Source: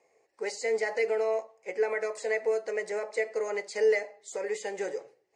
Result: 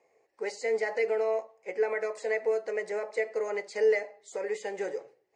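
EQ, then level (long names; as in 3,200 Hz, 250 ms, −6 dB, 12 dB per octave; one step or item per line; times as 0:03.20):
high-shelf EQ 4,800 Hz −8 dB
0.0 dB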